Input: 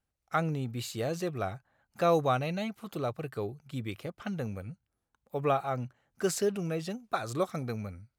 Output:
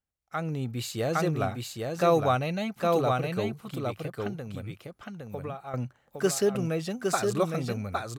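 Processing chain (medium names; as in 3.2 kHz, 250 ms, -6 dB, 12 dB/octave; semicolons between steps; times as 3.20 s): 3.65–5.74 s: compression 16:1, threshold -38 dBFS, peak gain reduction 16.5 dB; delay 811 ms -3.5 dB; level rider gain up to 11.5 dB; trim -7.5 dB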